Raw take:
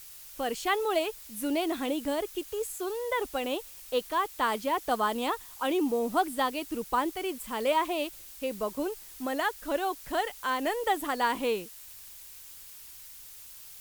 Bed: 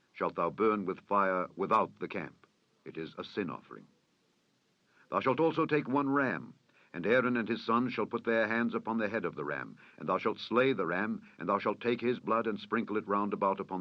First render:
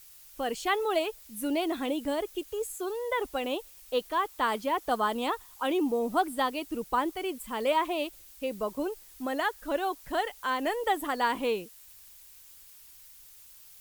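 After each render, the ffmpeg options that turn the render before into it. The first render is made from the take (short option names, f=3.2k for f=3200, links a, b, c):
-af "afftdn=nr=6:nf=-48"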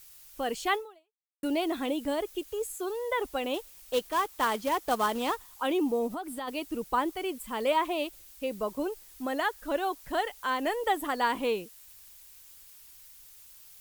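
-filter_complex "[0:a]asettb=1/sr,asplit=3[a][b][c];[a]atrim=end=3.544[d];[b]atrim=start=3.54:end=5.5,asetpts=PTS-STARTPTS,afade=t=in:d=0.004:c=qsin,afade=t=out:st=1.956:d=0.004:c=qsin,acrusher=bits=3:mode=log:mix=0:aa=0.000001[e];[c]atrim=start=5.496[f];[d][e]acrossfade=d=0.004:c1=hsin:c2=qsin[g];[g][f]acrossfade=d=0.004:c1=qsin:c2=hsin,asplit=3[h][i][j];[h]afade=t=out:st=6.07:d=0.02[k];[i]acompressor=threshold=-33dB:ratio=6:attack=3.2:release=140:knee=1:detection=peak,afade=t=in:st=6.07:d=0.02,afade=t=out:st=6.47:d=0.02[l];[j]afade=t=in:st=6.47:d=0.02[m];[k][l][m]amix=inputs=3:normalize=0,asplit=2[n][o];[n]atrim=end=1.43,asetpts=PTS-STARTPTS,afade=t=out:st=0.75:d=0.68:c=exp[p];[o]atrim=start=1.43,asetpts=PTS-STARTPTS,afade=t=in:d=0.004:c=hsin[q];[p][q]concat=n=2:v=0:a=1"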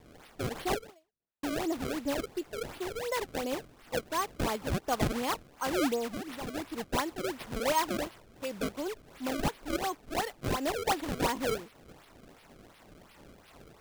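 -filter_complex "[0:a]acrossover=split=750[a][b];[a]aeval=exprs='val(0)*(1-0.5/2+0.5/2*cos(2*PI*2.9*n/s))':c=same[c];[b]aeval=exprs='val(0)*(1-0.5/2-0.5/2*cos(2*PI*2.9*n/s))':c=same[d];[c][d]amix=inputs=2:normalize=0,acrusher=samples=28:mix=1:aa=0.000001:lfo=1:lforange=44.8:lforate=2.8"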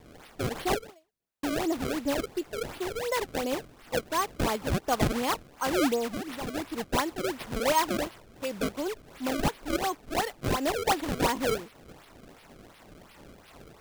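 -af "volume=3.5dB"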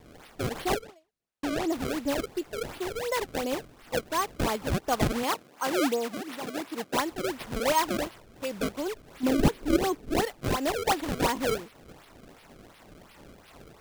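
-filter_complex "[0:a]asettb=1/sr,asplit=3[a][b][c];[a]atrim=end=0.824[d];[b]atrim=start=0.82:end=1.7,asetpts=PTS-STARTPTS,afade=t=in:d=0.004:c=qsin,afade=t=out:st=0.876:d=0.004:c=qsin,highshelf=f=11k:g=-10[e];[c]atrim=start=1.696[f];[d][e]acrossfade=d=0.004:c1=hsin:c2=qsin[g];[g][f]acrossfade=d=0.004:c1=qsin:c2=hsin,asettb=1/sr,asplit=3[h][i][j];[h]atrim=end=5.234[k];[i]atrim=start=5.23:end=6.97,asetpts=PTS-STARTPTS,afade=t=in:d=0.004:c=qsin,afade=t=out:st=1.736:d=0.004:c=qsin,highpass=200[l];[j]atrim=start=6.966[m];[k][l]acrossfade=d=0.004:c1=hsin:c2=qsin[n];[n][m]acrossfade=d=0.004:c1=qsin:c2=hsin,asettb=1/sr,asplit=3[o][p][q];[o]atrim=end=9.234[r];[p]atrim=start=9.23:end=10.25,asetpts=PTS-STARTPTS,afade=t=in:d=0.004:c=qsin,afade=t=out:st=1.016:d=0.004:c=qsin,lowshelf=f=550:t=q:w=1.5:g=6[s];[q]atrim=start=10.246[t];[r][s]acrossfade=d=0.004:c1=hsin:c2=qsin[u];[u][t]acrossfade=d=0.004:c1=qsin:c2=hsin"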